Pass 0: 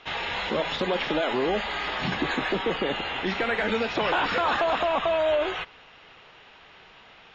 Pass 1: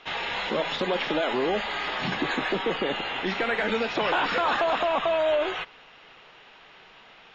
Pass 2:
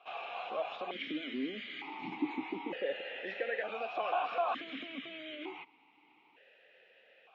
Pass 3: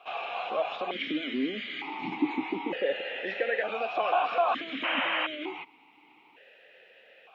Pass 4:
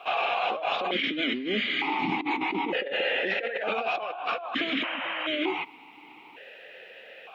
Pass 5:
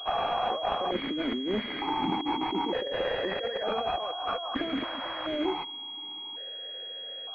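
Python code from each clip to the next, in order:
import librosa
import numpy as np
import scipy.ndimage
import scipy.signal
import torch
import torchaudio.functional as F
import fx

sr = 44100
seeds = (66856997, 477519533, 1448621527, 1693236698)

y1 = fx.peak_eq(x, sr, hz=68.0, db=-9.0, octaves=1.4)
y2 = fx.vowel_held(y1, sr, hz=1.1)
y3 = fx.spec_paint(y2, sr, seeds[0], shape='noise', start_s=4.83, length_s=0.44, low_hz=490.0, high_hz=3200.0, level_db=-36.0)
y3 = y3 * 10.0 ** (7.0 / 20.0)
y4 = fx.over_compress(y3, sr, threshold_db=-35.0, ratio=-1.0)
y4 = y4 * 10.0 ** (5.5 / 20.0)
y5 = fx.pwm(y4, sr, carrier_hz=3300.0)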